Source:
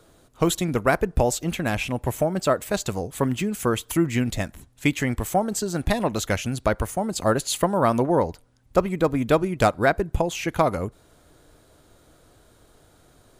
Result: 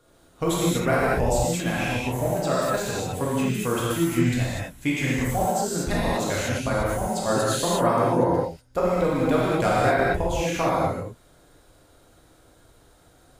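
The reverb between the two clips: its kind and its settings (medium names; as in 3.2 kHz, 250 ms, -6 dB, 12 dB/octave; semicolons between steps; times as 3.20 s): gated-style reverb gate 270 ms flat, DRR -8 dB; trim -8 dB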